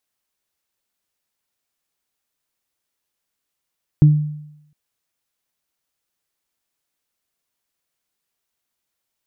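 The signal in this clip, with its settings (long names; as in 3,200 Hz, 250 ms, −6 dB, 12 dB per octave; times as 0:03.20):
harmonic partials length 0.71 s, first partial 150 Hz, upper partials −12 dB, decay 0.81 s, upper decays 0.28 s, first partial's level −4.5 dB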